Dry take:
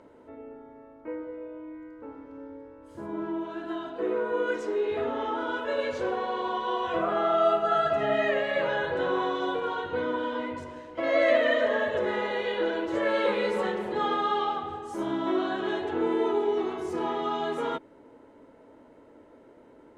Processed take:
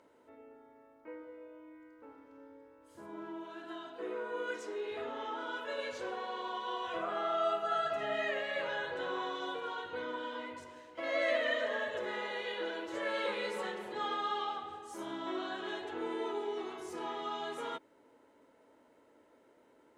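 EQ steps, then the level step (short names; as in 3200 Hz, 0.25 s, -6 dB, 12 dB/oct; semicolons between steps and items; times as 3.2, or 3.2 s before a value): tilt +2.5 dB/oct; -8.5 dB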